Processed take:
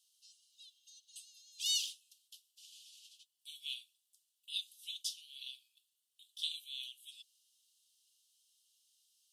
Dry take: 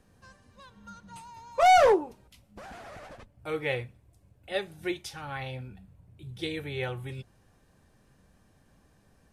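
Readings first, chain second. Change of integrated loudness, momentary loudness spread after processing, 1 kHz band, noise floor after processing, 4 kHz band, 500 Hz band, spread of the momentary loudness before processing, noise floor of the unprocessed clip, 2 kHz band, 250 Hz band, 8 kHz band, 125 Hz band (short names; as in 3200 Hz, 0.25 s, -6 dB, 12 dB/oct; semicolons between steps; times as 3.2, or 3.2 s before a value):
-12.0 dB, 24 LU, under -40 dB, -84 dBFS, +2.0 dB, under -40 dB, 26 LU, -64 dBFS, -21.5 dB, under -40 dB, +2.5 dB, under -40 dB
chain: steep high-pass 2900 Hz 96 dB/oct; gain +2.5 dB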